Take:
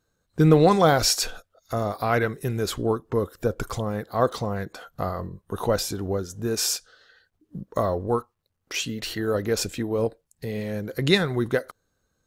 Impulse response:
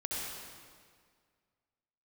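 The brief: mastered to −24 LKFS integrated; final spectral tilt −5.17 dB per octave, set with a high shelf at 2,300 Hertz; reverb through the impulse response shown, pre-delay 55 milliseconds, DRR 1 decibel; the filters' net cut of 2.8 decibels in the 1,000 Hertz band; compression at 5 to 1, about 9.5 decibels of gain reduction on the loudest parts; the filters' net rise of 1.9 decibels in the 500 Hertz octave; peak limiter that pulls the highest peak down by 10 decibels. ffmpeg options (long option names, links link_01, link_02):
-filter_complex "[0:a]equalizer=frequency=500:width_type=o:gain=3.5,equalizer=frequency=1000:width_type=o:gain=-5,highshelf=frequency=2300:gain=-3.5,acompressor=threshold=-21dB:ratio=5,alimiter=limit=-20.5dB:level=0:latency=1,asplit=2[link_01][link_02];[1:a]atrim=start_sample=2205,adelay=55[link_03];[link_02][link_03]afir=irnorm=-1:irlink=0,volume=-5dB[link_04];[link_01][link_04]amix=inputs=2:normalize=0,volume=5dB"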